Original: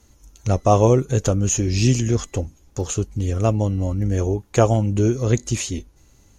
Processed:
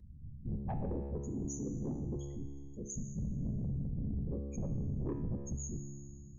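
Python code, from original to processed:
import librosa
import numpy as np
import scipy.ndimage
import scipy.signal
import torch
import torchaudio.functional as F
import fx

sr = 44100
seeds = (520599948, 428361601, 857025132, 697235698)

y = fx.spec_clip(x, sr, under_db=14, at=(0.88, 2.88), fade=0.02)
y = fx.dynamic_eq(y, sr, hz=620.0, q=2.6, threshold_db=-32.0, ratio=4.0, max_db=-5)
y = fx.spec_topn(y, sr, count=2)
y = fx.whisperise(y, sr, seeds[0])
y = 10.0 ** (-20.0 / 20.0) * np.tanh(y / 10.0 ** (-20.0 / 20.0))
y = fx.notch(y, sr, hz=1400.0, q=6.0)
y = fx.comb_fb(y, sr, f0_hz=70.0, decay_s=1.3, harmonics='all', damping=0.0, mix_pct=80)
y = fx.env_flatten(y, sr, amount_pct=50)
y = y * 10.0 ** (-1.0 / 20.0)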